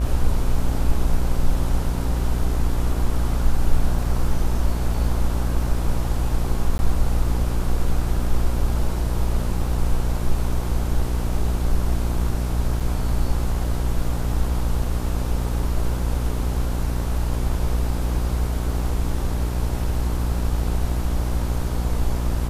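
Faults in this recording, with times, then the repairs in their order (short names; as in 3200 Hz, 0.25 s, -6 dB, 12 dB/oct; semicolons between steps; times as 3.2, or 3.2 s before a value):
buzz 60 Hz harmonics 27 -24 dBFS
6.78–6.79 gap 10 ms
12.8–12.81 gap 5.2 ms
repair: de-hum 60 Hz, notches 27; interpolate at 6.78, 10 ms; interpolate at 12.8, 5.2 ms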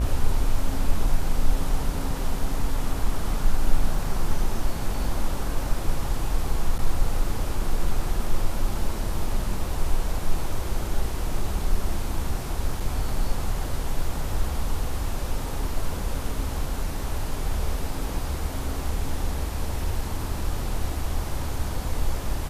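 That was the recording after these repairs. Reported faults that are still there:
none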